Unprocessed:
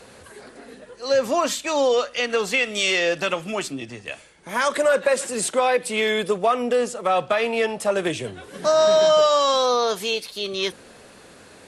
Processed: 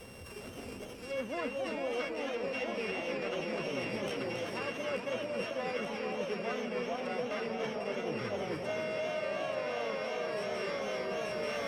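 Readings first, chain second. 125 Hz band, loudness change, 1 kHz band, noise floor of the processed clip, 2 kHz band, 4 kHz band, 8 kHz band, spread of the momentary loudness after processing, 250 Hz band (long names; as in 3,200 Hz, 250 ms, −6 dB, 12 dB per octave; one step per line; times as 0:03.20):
−6.5 dB, −15.0 dB, −16.0 dB, −46 dBFS, −12.5 dB, −17.0 dB, −22.5 dB, 2 LU, −9.0 dB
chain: samples sorted by size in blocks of 16 samples
treble cut that deepens with the level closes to 2,800 Hz, closed at −19.5 dBFS
low-shelf EQ 220 Hz +8.5 dB
delay that swaps between a low-pass and a high-pass 442 ms, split 1,100 Hz, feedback 80%, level −2 dB
reversed playback
downward compressor 12 to 1, threshold −29 dBFS, peak gain reduction 18 dB
reversed playback
feedback echo with a swinging delay time 270 ms, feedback 65%, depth 205 cents, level −6.5 dB
level −5 dB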